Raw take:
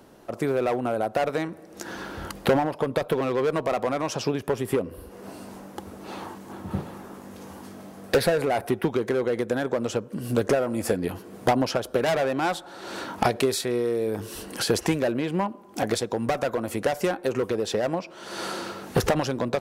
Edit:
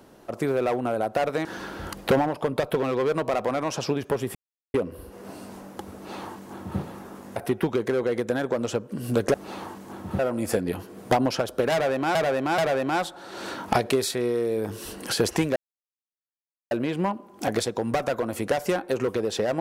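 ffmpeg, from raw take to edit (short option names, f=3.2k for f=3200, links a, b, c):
-filter_complex "[0:a]asplit=9[a][b][c][d][e][f][g][h][i];[a]atrim=end=1.452[j];[b]atrim=start=1.828:end=4.73,asetpts=PTS-STARTPTS,afade=t=out:st=2.898:d=0.004:c=hsin,apad=pad_dur=0.39[k];[c]atrim=start=4.73:end=7.352,asetpts=PTS-STARTPTS,afade=t=in:d=0.004:c=hsin[l];[d]atrim=start=8.568:end=10.552[m];[e]atrim=start=5.938:end=6.792[n];[f]atrim=start=10.548:end=12.512[o];[g]atrim=start=12.078:end=12.512[p];[h]atrim=start=12.078:end=15.06,asetpts=PTS-STARTPTS,afade=t=out:st=2.978:d=0.004:c=hsin,apad=pad_dur=1.15[q];[i]atrim=start=15.06,asetpts=PTS-STARTPTS,afade=t=in:d=0.004:c=hsin[r];[k][l]concat=n=2:v=0:a=1[s];[j][s]acrossfade=d=0.004:c1=hsin:c2=hsin[t];[t][m]acrossfade=d=0.004:c1=hsin:c2=hsin[u];[u][n]acrossfade=d=0.004:c1=hsin:c2=hsin[v];[v][o]acrossfade=d=0.004:c1=hsin:c2=hsin[w];[w][p]acrossfade=d=0.004:c1=hsin:c2=hsin[x];[q][r]concat=n=2:v=0:a=1[y];[x][y]acrossfade=d=0.004:c1=hsin:c2=hsin"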